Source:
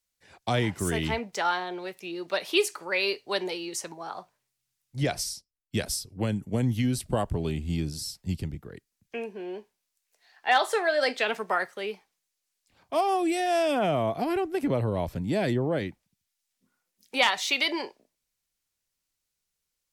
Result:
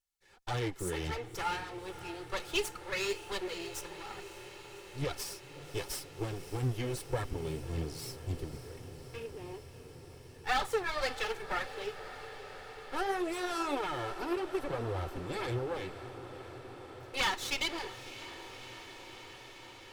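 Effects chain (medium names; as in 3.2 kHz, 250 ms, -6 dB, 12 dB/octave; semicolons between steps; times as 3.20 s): comb filter that takes the minimum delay 2.3 ms; flange 1.8 Hz, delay 0.5 ms, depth 5.6 ms, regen +37%; on a send: echo that smears into a reverb 582 ms, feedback 79%, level -13.5 dB; on the sum: trim -3 dB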